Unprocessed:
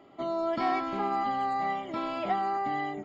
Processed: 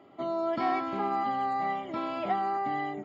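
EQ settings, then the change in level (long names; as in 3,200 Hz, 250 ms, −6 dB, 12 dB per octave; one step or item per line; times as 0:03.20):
high-pass filter 56 Hz
high-shelf EQ 4,500 Hz −6.5 dB
0.0 dB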